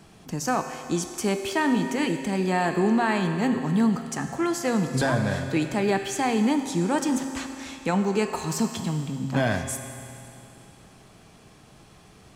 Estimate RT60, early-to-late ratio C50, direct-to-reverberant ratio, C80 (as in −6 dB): 2.7 s, 6.5 dB, 5.5 dB, 7.5 dB